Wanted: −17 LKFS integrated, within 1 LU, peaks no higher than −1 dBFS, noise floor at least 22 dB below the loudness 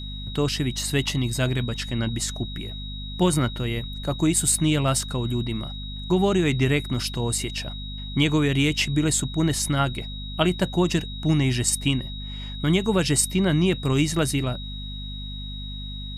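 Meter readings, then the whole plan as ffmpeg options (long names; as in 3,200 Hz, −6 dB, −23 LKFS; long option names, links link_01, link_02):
mains hum 50 Hz; hum harmonics up to 250 Hz; level of the hum −32 dBFS; interfering tone 3,800 Hz; level of the tone −37 dBFS; integrated loudness −24.0 LKFS; sample peak −6.5 dBFS; target loudness −17.0 LKFS
→ -af "bandreject=frequency=50:width_type=h:width=4,bandreject=frequency=100:width_type=h:width=4,bandreject=frequency=150:width_type=h:width=4,bandreject=frequency=200:width_type=h:width=4,bandreject=frequency=250:width_type=h:width=4"
-af "bandreject=frequency=3800:width=30"
-af "volume=7dB,alimiter=limit=-1dB:level=0:latency=1"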